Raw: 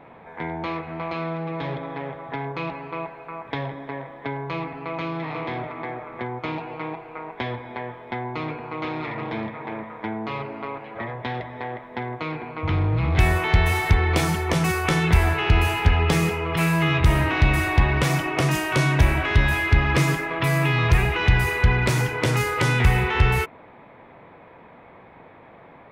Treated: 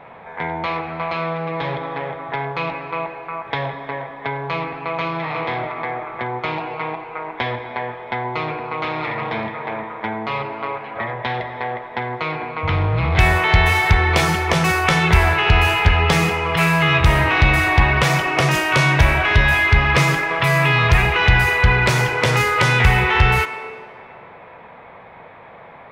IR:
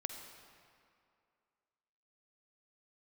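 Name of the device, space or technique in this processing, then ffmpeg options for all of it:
filtered reverb send: -filter_complex "[0:a]asplit=2[link_01][link_02];[link_02]highpass=frequency=290:width=0.5412,highpass=frequency=290:width=1.3066,lowpass=7000[link_03];[1:a]atrim=start_sample=2205[link_04];[link_03][link_04]afir=irnorm=-1:irlink=0,volume=-0.5dB[link_05];[link_01][link_05]amix=inputs=2:normalize=0,volume=2.5dB"

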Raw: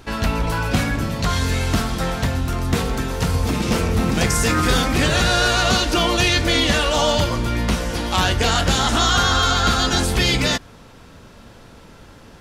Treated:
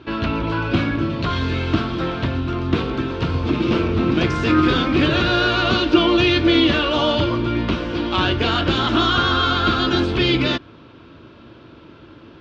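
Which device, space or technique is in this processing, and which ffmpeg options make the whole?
guitar cabinet: -af "highpass=93,equalizer=frequency=190:width_type=q:width=4:gain=-7,equalizer=frequency=330:width_type=q:width=4:gain=10,equalizer=frequency=480:width_type=q:width=4:gain=-5,equalizer=frequency=790:width_type=q:width=4:gain=-9,equalizer=frequency=1900:width_type=q:width=4:gain=-8,lowpass=frequency=3600:width=0.5412,lowpass=frequency=3600:width=1.3066,volume=2dB"

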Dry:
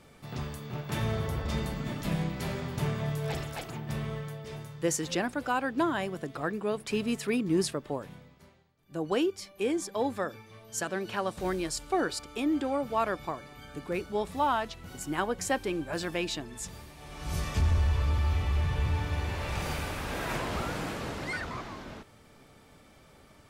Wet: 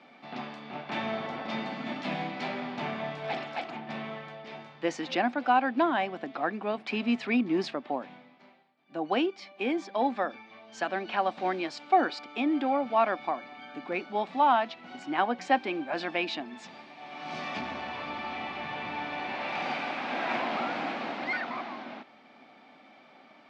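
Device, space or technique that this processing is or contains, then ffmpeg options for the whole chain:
kitchen radio: -filter_complex "[0:a]highpass=210,asettb=1/sr,asplit=3[link_01][link_02][link_03];[link_01]atrim=end=1.724[link_04];[link_02]atrim=start=1.72:end=2.48,asetpts=PTS-STARTPTS,afade=type=in:duration=0.004:curve=qsin,afade=type=out:start_time=0.756:duration=0.004:curve=qsin,highshelf=frequency=4700:gain=5[link_05];[link_03]atrim=start=2.476[link_06];[link_04][link_05]acrossfade=duration=0.004:curve1=hsin:curve2=qsin[link_07];[link_07][link_06]acrossfade=duration=0.004:curve1=qsin:curve2=hsin,highpass=230,equalizer=frequency=240:width_type=q:width=4:gain=8,equalizer=frequency=440:width_type=q:width=4:gain=-8,equalizer=frequency=750:width_type=q:width=4:gain=9,equalizer=frequency=2300:width_type=q:width=4:gain=5,lowpass=frequency=4300:width=0.5412,lowpass=frequency=4300:width=1.3066,volume=1.5dB"

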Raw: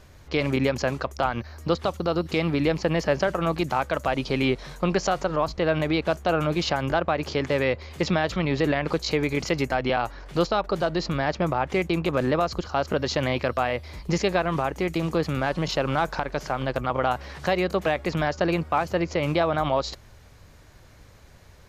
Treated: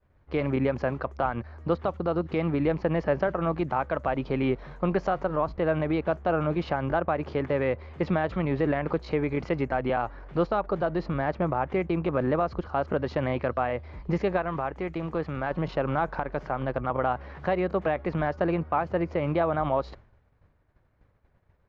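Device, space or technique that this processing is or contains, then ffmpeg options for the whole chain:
hearing-loss simulation: -filter_complex "[0:a]lowpass=1700,agate=range=-33dB:threshold=-41dB:ratio=3:detection=peak,asettb=1/sr,asplit=3[link_01][link_02][link_03];[link_01]atrim=end=14.374[link_04];[link_02]atrim=start=14.37:end=15.51,asetpts=PTS-STARTPTS,afade=type=in:duration=0.004:curve=qsin,afade=type=out:start_time=1.136:duration=0.004:curve=qsin,equalizer=frequency=200:width=0.35:gain=-4.5[link_05];[link_03]atrim=start=15.506[link_06];[link_04][link_05]acrossfade=duration=0.004:curve1=hsin:curve2=qsin[link_07];[link_07][link_06]acrossfade=duration=0.004:curve1=qsin:curve2=hsin,volume=-2dB"

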